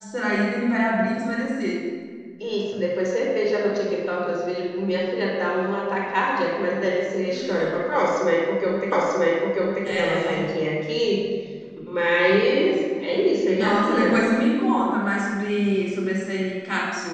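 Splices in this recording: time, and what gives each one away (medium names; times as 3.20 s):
8.92 s: repeat of the last 0.94 s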